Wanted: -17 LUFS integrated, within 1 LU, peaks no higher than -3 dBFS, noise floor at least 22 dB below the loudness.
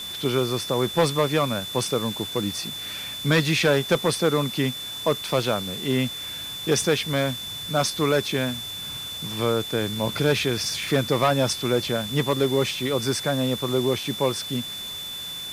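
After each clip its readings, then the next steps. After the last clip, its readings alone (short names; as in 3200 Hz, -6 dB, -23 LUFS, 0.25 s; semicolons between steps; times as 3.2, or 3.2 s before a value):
steady tone 3500 Hz; tone level -32 dBFS; noise floor -34 dBFS; noise floor target -46 dBFS; loudness -24.0 LUFS; peak -10.5 dBFS; loudness target -17.0 LUFS
-> notch 3500 Hz, Q 30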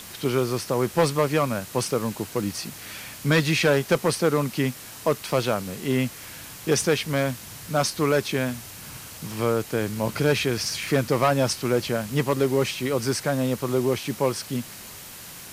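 steady tone none; noise floor -41 dBFS; noise floor target -47 dBFS
-> noise print and reduce 6 dB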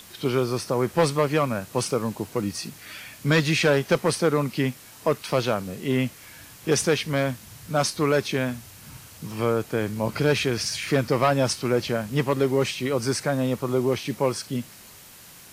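noise floor -47 dBFS; loudness -24.5 LUFS; peak -11.0 dBFS; loudness target -17.0 LUFS
-> gain +7.5 dB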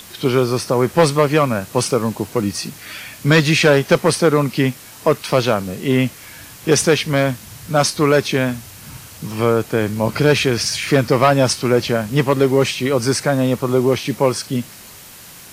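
loudness -17.0 LUFS; peak -3.5 dBFS; noise floor -40 dBFS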